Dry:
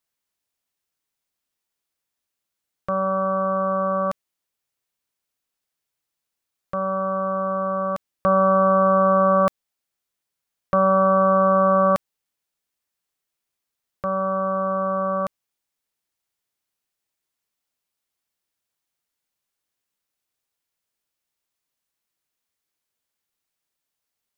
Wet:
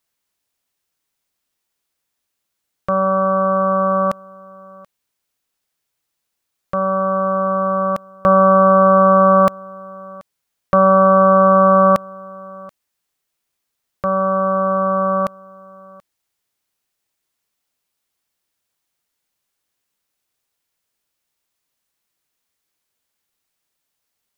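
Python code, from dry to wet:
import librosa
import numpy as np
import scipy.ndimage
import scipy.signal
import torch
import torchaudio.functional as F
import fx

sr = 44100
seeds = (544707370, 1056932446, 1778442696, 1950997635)

y = x + 10.0 ** (-23.5 / 20.0) * np.pad(x, (int(732 * sr / 1000.0), 0))[:len(x)]
y = y * librosa.db_to_amplitude(6.0)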